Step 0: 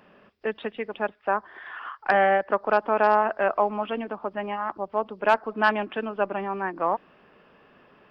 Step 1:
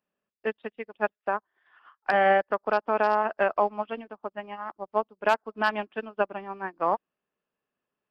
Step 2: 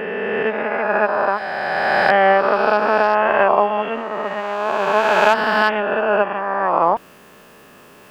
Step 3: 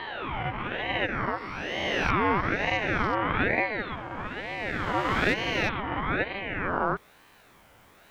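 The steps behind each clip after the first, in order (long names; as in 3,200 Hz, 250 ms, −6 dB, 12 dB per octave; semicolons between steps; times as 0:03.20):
bass and treble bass 0 dB, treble +9 dB; brickwall limiter −14 dBFS, peak gain reduction 6 dB; expander for the loud parts 2.5 to 1, over −45 dBFS; level +3.5 dB
peak hold with a rise ahead of every peak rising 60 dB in 2.79 s; reversed playback; upward compression, threshold −26 dBFS; reversed playback; level +6 dB
ring modulator whose carrier an LFO sweeps 840 Hz, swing 65%, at 1.1 Hz; level −8 dB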